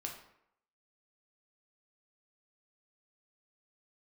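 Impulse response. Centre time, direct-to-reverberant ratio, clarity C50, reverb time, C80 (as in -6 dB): 27 ms, 0.5 dB, 6.5 dB, 0.75 s, 9.5 dB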